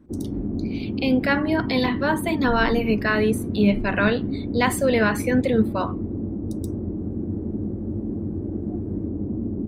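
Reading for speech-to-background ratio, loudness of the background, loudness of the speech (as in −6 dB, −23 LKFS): 6.0 dB, −28.5 LKFS, −22.5 LKFS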